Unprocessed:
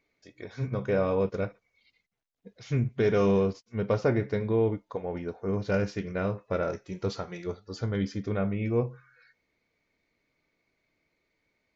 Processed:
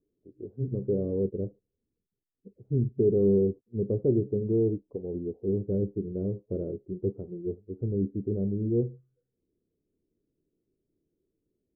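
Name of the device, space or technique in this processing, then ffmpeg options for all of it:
under water: -af "lowpass=frequency=400:width=0.5412,lowpass=frequency=400:width=1.3066,equalizer=frequency=380:width_type=o:width=0.45:gain=8"

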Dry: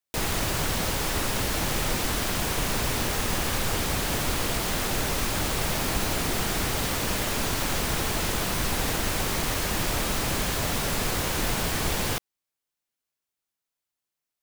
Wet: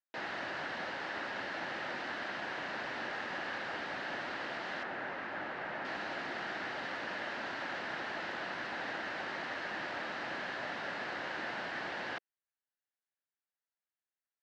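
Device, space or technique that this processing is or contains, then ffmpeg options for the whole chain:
phone earpiece: -filter_complex "[0:a]highpass=390,equalizer=frequency=440:width_type=q:width=4:gain=-8,equalizer=frequency=1100:width_type=q:width=4:gain=-5,equalizer=frequency=1700:width_type=q:width=4:gain=6,equalizer=frequency=2400:width_type=q:width=4:gain=-6,equalizer=frequency=3400:width_type=q:width=4:gain=-7,lowpass=frequency=3500:width=0.5412,lowpass=frequency=3500:width=1.3066,asettb=1/sr,asplit=3[link_01][link_02][link_03];[link_01]atrim=end=4.834[link_04];[link_02]atrim=start=4.83:end=5.85,asetpts=PTS-STARTPTS,afade=type=in:duration=0.004:curve=qsin,afade=type=out:start_time=1.016:duration=0.004:curve=qsin,acrossover=split=2700[link_05][link_06];[link_06]acompressor=threshold=-56dB:ratio=4:attack=1:release=60[link_07];[link_05][link_07]amix=inputs=2:normalize=0[link_08];[link_03]atrim=start=5.846[link_09];[link_04][link_08]acrossfade=duration=0.004:curve1=hsin:curve2=qsin[link_10];[link_10][link_09]acrossfade=duration=0.004:curve1=qsin:curve2=hsin,volume=-6.5dB"

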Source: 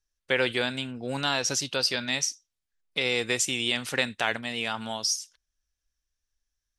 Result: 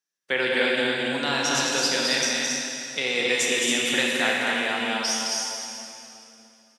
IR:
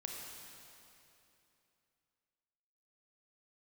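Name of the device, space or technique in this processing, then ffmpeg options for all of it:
stadium PA: -filter_complex "[0:a]highpass=frequency=160:width=0.5412,highpass=frequency=160:width=1.3066,equalizer=frequency=1800:width_type=o:width=0.44:gain=3.5,aecho=1:1:215.7|274.1:0.631|0.631[link_01];[1:a]atrim=start_sample=2205[link_02];[link_01][link_02]afir=irnorm=-1:irlink=0,volume=3dB"

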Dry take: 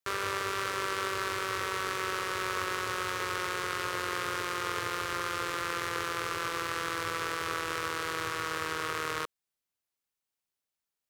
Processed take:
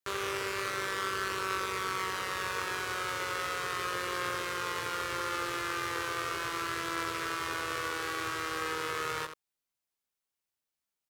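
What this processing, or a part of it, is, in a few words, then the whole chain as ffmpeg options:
slapback doubling: -filter_complex "[0:a]asplit=3[link_01][link_02][link_03];[link_02]adelay=15,volume=-5dB[link_04];[link_03]adelay=84,volume=-8.5dB[link_05];[link_01][link_04][link_05]amix=inputs=3:normalize=0,volume=-2.5dB"

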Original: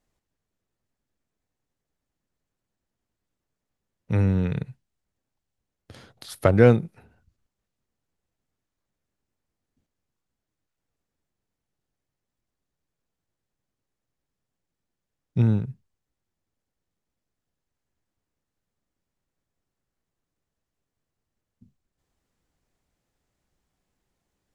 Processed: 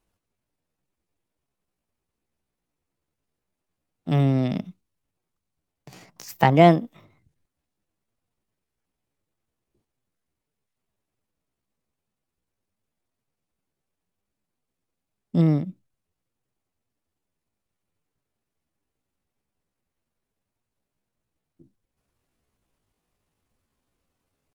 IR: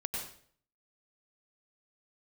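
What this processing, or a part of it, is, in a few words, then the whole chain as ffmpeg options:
chipmunk voice: -af "asetrate=62367,aresample=44100,atempo=0.707107,volume=1dB"

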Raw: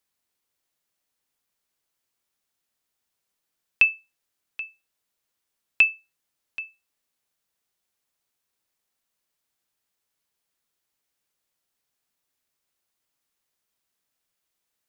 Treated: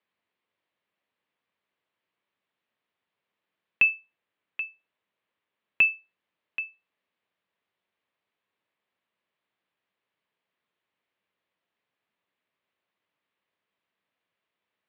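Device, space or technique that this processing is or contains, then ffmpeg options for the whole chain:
overdrive pedal into a guitar cabinet: -filter_complex "[0:a]asettb=1/sr,asplit=3[link_01][link_02][link_03];[link_01]atrim=end=3.844[link_04];[link_02]atrim=start=3.84:end=5.84,asetpts=PTS-STARTPTS,afade=type=in:duration=0.004:curve=qsin,afade=type=out:start_time=1.996:duration=0.004:curve=qsin,lowpass=5000[link_05];[link_03]atrim=start=5.836[link_06];[link_04][link_05]acrossfade=duration=0.004:curve1=hsin:curve2=qsin[link_07];[link_07][link_06]acrossfade=duration=0.004:curve1=qsin:curve2=hsin,asplit=2[link_08][link_09];[link_09]highpass=frequency=720:poles=1,volume=12dB,asoftclip=type=tanh:threshold=-6.5dB[link_10];[link_08][link_10]amix=inputs=2:normalize=0,lowpass=frequency=1500:poles=1,volume=-6dB,highpass=92,equalizer=frequency=97:width_type=q:width=4:gain=6,equalizer=frequency=190:width_type=q:width=4:gain=5,equalizer=frequency=790:width_type=q:width=4:gain=-5,equalizer=frequency=1400:width_type=q:width=4:gain=-5,lowpass=frequency=3500:width=0.5412,lowpass=frequency=3500:width=1.3066,volume=1dB"

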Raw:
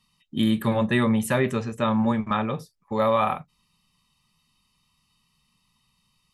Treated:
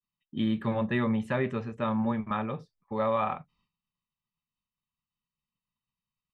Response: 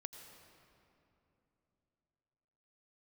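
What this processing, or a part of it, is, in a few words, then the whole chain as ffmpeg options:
hearing-loss simulation: -af "lowpass=3000,agate=range=-33dB:threshold=-59dB:ratio=3:detection=peak,volume=-6dB"

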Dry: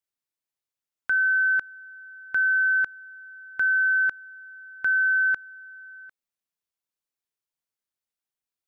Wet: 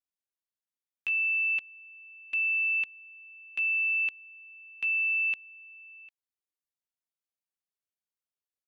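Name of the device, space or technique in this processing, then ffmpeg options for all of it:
chipmunk voice: -af "asetrate=76340,aresample=44100,atempo=0.577676,volume=-6dB"

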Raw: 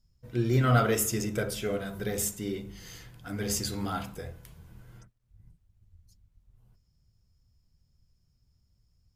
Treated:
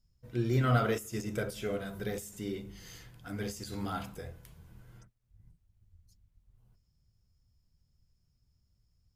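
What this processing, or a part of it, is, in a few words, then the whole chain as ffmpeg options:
de-esser from a sidechain: -filter_complex "[0:a]asplit=2[link_01][link_02];[link_02]highpass=4800,apad=whole_len=403624[link_03];[link_01][link_03]sidechaincompress=threshold=-41dB:ratio=5:attack=3.7:release=65,volume=-3.5dB"

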